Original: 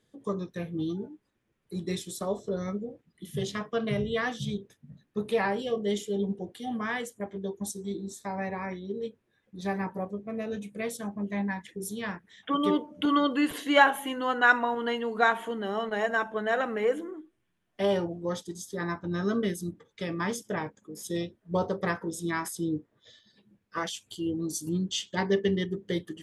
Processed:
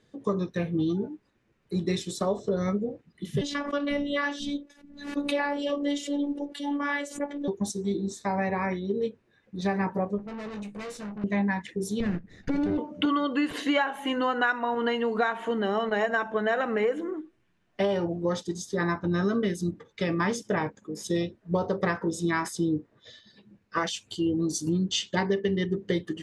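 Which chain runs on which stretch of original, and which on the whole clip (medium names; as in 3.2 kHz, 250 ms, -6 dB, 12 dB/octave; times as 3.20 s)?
3.41–7.48 s: high-pass 170 Hz + robot voice 287 Hz + swell ahead of each attack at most 99 dB/s
10.18–11.24 s: valve stage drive 43 dB, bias 0.45 + doubling 19 ms -8 dB
12.00–12.78 s: comb filter that takes the minimum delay 0.47 ms + tilt shelf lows +9 dB, about 670 Hz + compression, threshold -29 dBFS
whole clip: low-pass 6.1 kHz 12 dB/octave; band-stop 3.3 kHz, Q 13; compression 10:1, threshold -29 dBFS; trim +7 dB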